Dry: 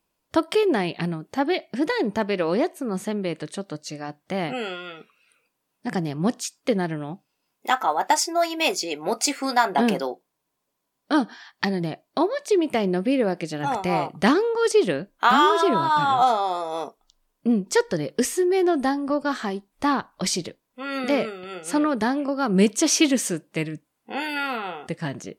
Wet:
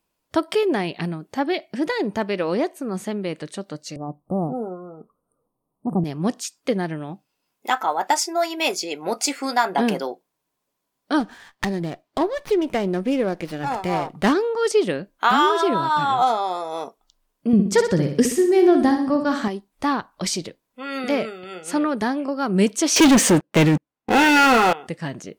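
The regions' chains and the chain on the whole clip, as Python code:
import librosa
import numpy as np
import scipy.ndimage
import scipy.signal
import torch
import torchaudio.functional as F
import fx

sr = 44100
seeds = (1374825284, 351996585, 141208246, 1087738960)

y = fx.chain(x, sr, fx.cheby1_bandstop(low_hz=1200.0, high_hz=8700.0, order=5),
    fx.tilt_eq(slope=-2.5), at=(3.96, 6.04))
y = fx.chain(y, sr, fx.notch(hz=2700.0, q=27.0),
    fx.running_max(window=5), at=(11.2, 14.33))
y = fx.chain(y, sr, fx.peak_eq(hz=110.0, db=11.0, octaves=2.6),
    fx.room_flutter(wall_m=10.7, rt60_s=0.53), at=(17.53, 19.48))
y = fx.chain(y, sr, fx.lowpass(hz=2500.0, slope=6),
    fx.leveller(passes=5), at=(22.96, 24.73))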